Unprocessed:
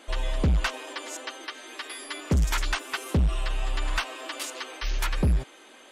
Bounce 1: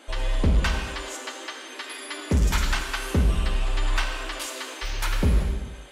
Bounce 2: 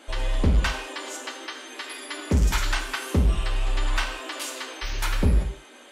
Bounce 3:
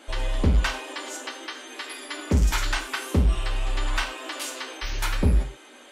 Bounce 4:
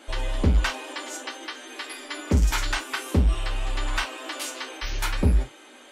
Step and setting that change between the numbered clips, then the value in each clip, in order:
non-linear reverb, gate: 500, 230, 150, 90 ms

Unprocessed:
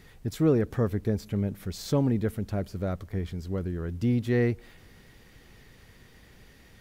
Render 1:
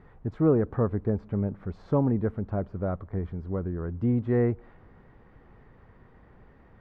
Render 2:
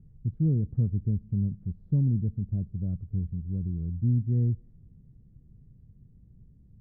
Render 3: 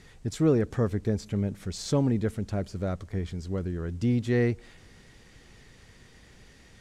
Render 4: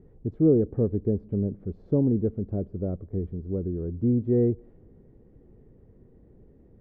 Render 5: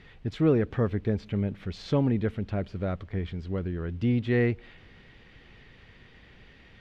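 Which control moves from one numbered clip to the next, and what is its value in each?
synth low-pass, frequency: 1100, 150, 7900, 410, 3000 Hz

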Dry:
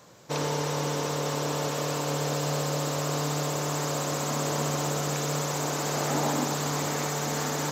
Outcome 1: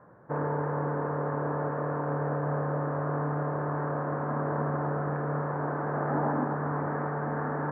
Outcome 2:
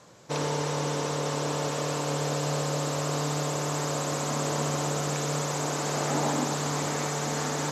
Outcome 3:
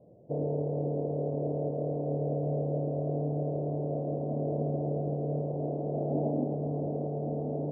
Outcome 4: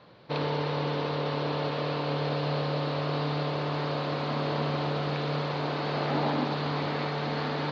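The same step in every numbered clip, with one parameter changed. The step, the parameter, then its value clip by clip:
Chebyshev low-pass, frequency: 1700, 12000, 680, 4400 Hz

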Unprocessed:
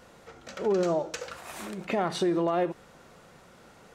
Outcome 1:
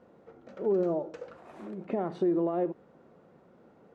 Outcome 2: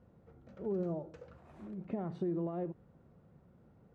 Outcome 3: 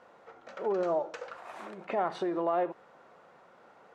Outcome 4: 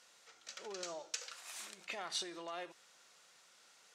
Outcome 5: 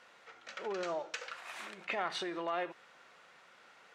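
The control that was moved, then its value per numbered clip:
band-pass, frequency: 310, 100, 850, 5900, 2200 Hz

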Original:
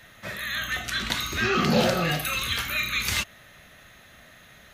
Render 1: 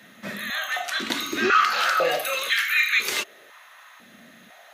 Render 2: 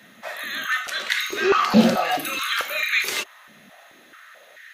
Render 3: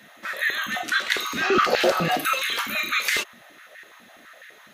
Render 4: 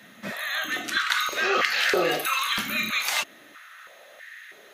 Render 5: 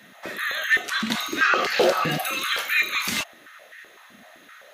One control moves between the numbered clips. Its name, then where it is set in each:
stepped high-pass, rate: 2, 4.6, 12, 3.1, 7.8 Hz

